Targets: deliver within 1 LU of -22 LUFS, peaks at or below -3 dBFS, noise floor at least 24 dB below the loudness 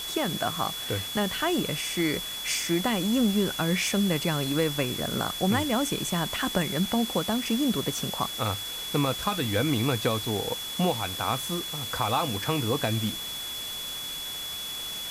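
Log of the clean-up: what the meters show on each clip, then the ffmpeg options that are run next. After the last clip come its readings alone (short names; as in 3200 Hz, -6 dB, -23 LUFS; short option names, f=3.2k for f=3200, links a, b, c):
steady tone 3400 Hz; tone level -34 dBFS; noise floor -35 dBFS; noise floor target -52 dBFS; loudness -27.5 LUFS; peak -11.5 dBFS; loudness target -22.0 LUFS
-> -af "bandreject=f=3.4k:w=30"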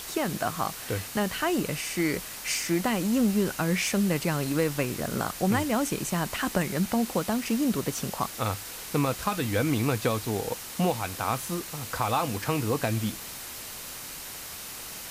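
steady tone none; noise floor -40 dBFS; noise floor target -53 dBFS
-> -af "afftdn=nr=13:nf=-40"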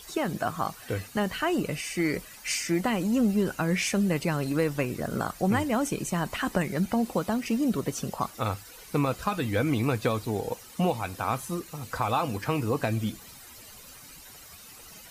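noise floor -48 dBFS; noise floor target -53 dBFS
-> -af "afftdn=nr=6:nf=-48"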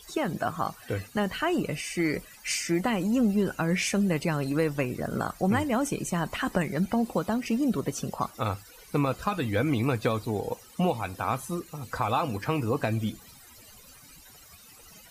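noise floor -52 dBFS; noise floor target -53 dBFS
-> -af "afftdn=nr=6:nf=-52"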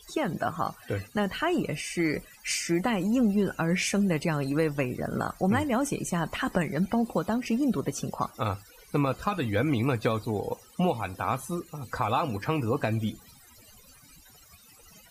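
noise floor -55 dBFS; loudness -28.5 LUFS; peak -12.5 dBFS; loudness target -22.0 LUFS
-> -af "volume=6.5dB"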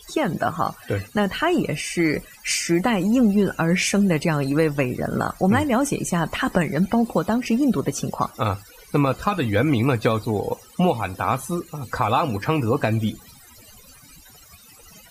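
loudness -22.0 LUFS; peak -6.0 dBFS; noise floor -48 dBFS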